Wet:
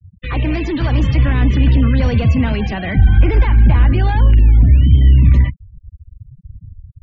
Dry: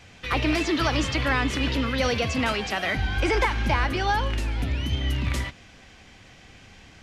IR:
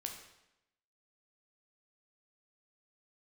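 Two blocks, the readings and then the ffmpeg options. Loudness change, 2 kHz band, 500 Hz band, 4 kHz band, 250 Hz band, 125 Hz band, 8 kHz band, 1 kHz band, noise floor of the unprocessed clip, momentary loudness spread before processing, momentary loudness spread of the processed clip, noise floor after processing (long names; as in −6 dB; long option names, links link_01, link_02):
+11.5 dB, −0.5 dB, +2.5 dB, −3.0 dB, +9.0 dB, +17.0 dB, below −10 dB, −0.5 dB, −50 dBFS, 5 LU, 8 LU, −47 dBFS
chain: -filter_complex "[0:a]aeval=exprs='0.266*(cos(1*acos(clip(val(0)/0.266,-1,1)))-cos(1*PI/2))+0.0119*(cos(2*acos(clip(val(0)/0.266,-1,1)))-cos(2*PI/2))+0.075*(cos(5*acos(clip(val(0)/0.266,-1,1)))-cos(5*PI/2))+0.00266*(cos(6*acos(clip(val(0)/0.266,-1,1)))-cos(6*PI/2))+0.00596*(cos(7*acos(clip(val(0)/0.266,-1,1)))-cos(7*PI/2))':channel_layout=same,asplit=2[link_01][link_02];[link_02]alimiter=limit=-19.5dB:level=0:latency=1:release=179,volume=2.5dB[link_03];[link_01][link_03]amix=inputs=2:normalize=0,afftfilt=real='re*gte(hypot(re,im),0.112)':imag='im*gte(hypot(re,im),0.112)':win_size=1024:overlap=0.75,acrossover=split=260[link_04][link_05];[link_04]dynaudnorm=framelen=390:gausssize=5:maxgain=7.5dB[link_06];[link_06][link_05]amix=inputs=2:normalize=0,bass=frequency=250:gain=10,treble=frequency=4000:gain=-10,bandreject=frequency=1300:width=9.2,volume=-8.5dB"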